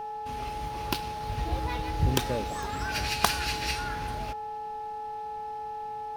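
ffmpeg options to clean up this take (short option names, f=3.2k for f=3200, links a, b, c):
-af "adeclick=t=4,bandreject=f=438.6:t=h:w=4,bandreject=f=877.2:t=h:w=4,bandreject=f=1.3158k:t=h:w=4,bandreject=f=1.7544k:t=h:w=4,bandreject=f=840:w=30"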